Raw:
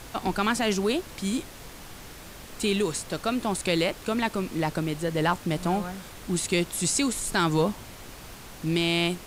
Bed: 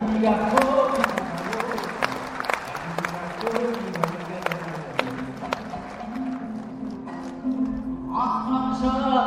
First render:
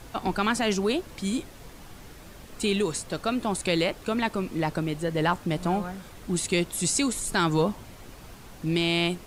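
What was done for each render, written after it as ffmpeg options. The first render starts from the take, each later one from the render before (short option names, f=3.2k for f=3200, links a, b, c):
-af "afftdn=nr=6:nf=-44"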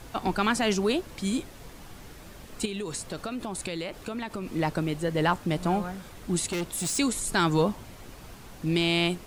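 -filter_complex "[0:a]asettb=1/sr,asplit=3[a][b][c];[a]atrim=end=2.654[d];[b]atrim=start=2.65:end=4.52,asetpts=PTS-STARTPTS,afade=t=in:d=0.004:c=qsin,afade=t=out:st=1.866:d=0.004:c=qsin,acompressor=threshold=-29dB:ratio=10:attack=3.2:release=140:knee=1:detection=peak[e];[c]atrim=start=4.516[f];[d][e]acrossfade=d=0.004:c1=hsin:c2=qsin[g];[g][f]acrossfade=d=0.004:c1=qsin:c2=hsin,asplit=3[h][i][j];[h]afade=t=out:st=6.47:d=0.02[k];[i]asoftclip=type=hard:threshold=-27dB,afade=t=in:st=6.47:d=0.02,afade=t=out:st=6.97:d=0.02[l];[j]afade=t=in:st=6.97:d=0.02[m];[k][l][m]amix=inputs=3:normalize=0"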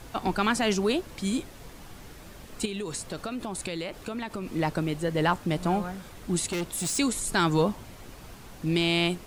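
-af anull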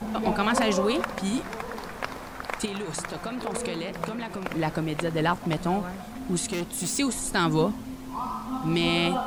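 -filter_complex "[1:a]volume=-8.5dB[a];[0:a][a]amix=inputs=2:normalize=0"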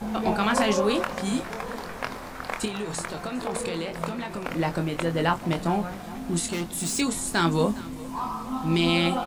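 -filter_complex "[0:a]asplit=2[a][b];[b]adelay=24,volume=-7dB[c];[a][c]amix=inputs=2:normalize=0,aecho=1:1:407|814|1221|1628:0.106|0.0519|0.0254|0.0125"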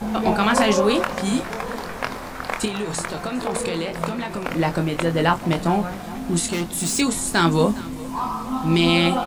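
-af "volume=5dB"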